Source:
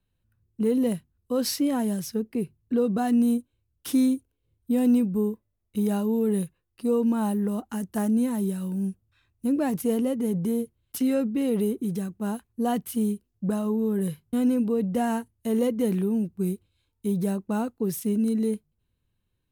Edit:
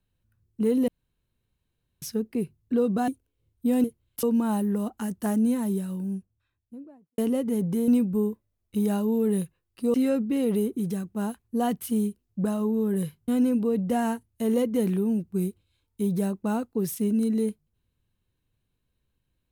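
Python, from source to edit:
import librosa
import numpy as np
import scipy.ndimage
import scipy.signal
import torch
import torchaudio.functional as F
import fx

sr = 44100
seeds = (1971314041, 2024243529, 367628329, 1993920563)

y = fx.studio_fade_out(x, sr, start_s=8.23, length_s=1.67)
y = fx.edit(y, sr, fx.room_tone_fill(start_s=0.88, length_s=1.14),
    fx.cut(start_s=3.08, length_s=1.05),
    fx.swap(start_s=4.89, length_s=2.06, other_s=10.6, other_length_s=0.39), tone=tone)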